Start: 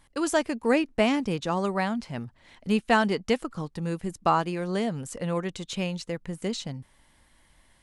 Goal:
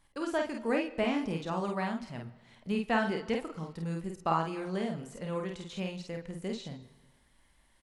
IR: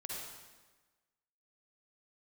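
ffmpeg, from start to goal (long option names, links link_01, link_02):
-filter_complex "[0:a]aecho=1:1:31|49:0.299|0.631,asplit=2[link_01][link_02];[1:a]atrim=start_sample=2205,lowpass=4800,adelay=5[link_03];[link_02][link_03]afir=irnorm=-1:irlink=0,volume=-14dB[link_04];[link_01][link_04]amix=inputs=2:normalize=0,acrossover=split=3600[link_05][link_06];[link_06]acompressor=threshold=-43dB:ratio=4:attack=1:release=60[link_07];[link_05][link_07]amix=inputs=2:normalize=0,volume=-8dB"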